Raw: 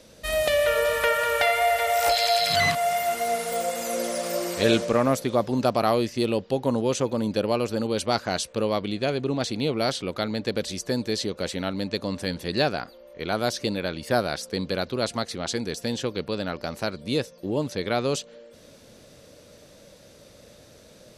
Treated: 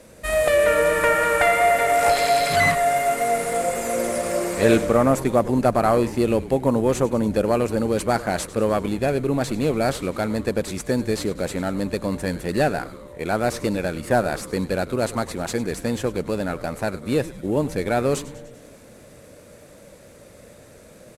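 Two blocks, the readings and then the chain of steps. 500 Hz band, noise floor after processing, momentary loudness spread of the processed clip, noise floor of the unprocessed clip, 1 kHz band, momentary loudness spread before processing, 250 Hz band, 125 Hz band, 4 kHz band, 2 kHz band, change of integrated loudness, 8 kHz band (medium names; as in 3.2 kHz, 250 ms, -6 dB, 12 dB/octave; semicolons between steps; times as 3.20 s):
+4.5 dB, -47 dBFS, 9 LU, -51 dBFS, +4.0 dB, 9 LU, +4.5 dB, +5.0 dB, -5.0 dB, +3.5 dB, +3.5 dB, +2.5 dB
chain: CVSD coder 64 kbps; high-order bell 4.2 kHz -8.5 dB 1.3 oct; frequency-shifting echo 99 ms, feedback 63%, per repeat -140 Hz, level -16 dB; trim +4.5 dB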